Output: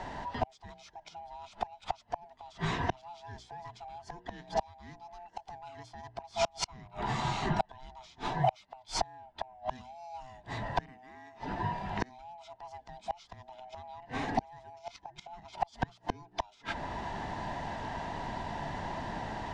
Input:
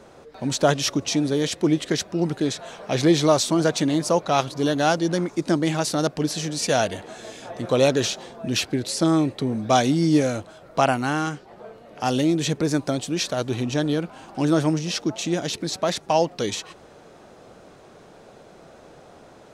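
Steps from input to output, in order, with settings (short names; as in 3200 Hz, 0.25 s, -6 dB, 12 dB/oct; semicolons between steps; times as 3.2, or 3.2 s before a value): band-swap scrambler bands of 500 Hz; air absorption 85 m; notches 60/120/180/240/300/360/420/480 Hz; in parallel at -5 dB: soft clip -22 dBFS, distortion -9 dB; on the sum: flipped gate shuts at -17 dBFS, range -37 dB; AGC gain up to 4.5 dB; high shelf 11000 Hz -11.5 dB; three-band squash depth 40%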